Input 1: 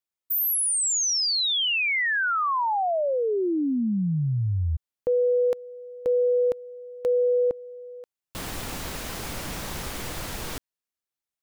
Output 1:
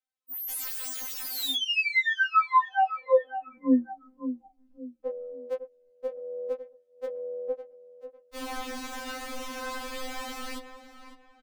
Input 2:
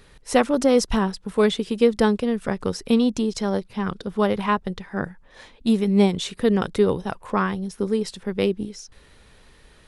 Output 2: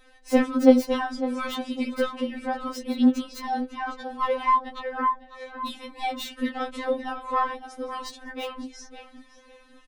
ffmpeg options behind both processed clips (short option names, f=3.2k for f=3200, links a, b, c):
-filter_complex "[0:a]bandreject=f=50:t=h:w=6,bandreject=f=100:t=h:w=6,bandreject=f=150:t=h:w=6,bandreject=f=200:t=h:w=6,asplit=2[a][b];[b]adelay=554,lowpass=f=3.2k:p=1,volume=-11.5dB,asplit=2[c][d];[d]adelay=554,lowpass=f=3.2k:p=1,volume=0.33,asplit=2[e][f];[f]adelay=554,lowpass=f=3.2k:p=1,volume=0.33[g];[c][e][g]amix=inputs=3:normalize=0[h];[a][h]amix=inputs=2:normalize=0,asplit=2[i][j];[j]highpass=f=720:p=1,volume=11dB,asoftclip=type=tanh:threshold=-4dB[k];[i][k]amix=inputs=2:normalize=0,lowpass=f=1.6k:p=1,volume=-6dB,acrossover=split=290|4200[l][m][n];[m]flanger=delay=18:depth=3.3:speed=0.26[o];[n]aeval=exprs='(mod(35.5*val(0)+1,2)-1)/35.5':c=same[p];[l][o][p]amix=inputs=3:normalize=0,afftfilt=real='re*3.46*eq(mod(b,12),0)':imag='im*3.46*eq(mod(b,12),0)':win_size=2048:overlap=0.75,volume=1.5dB"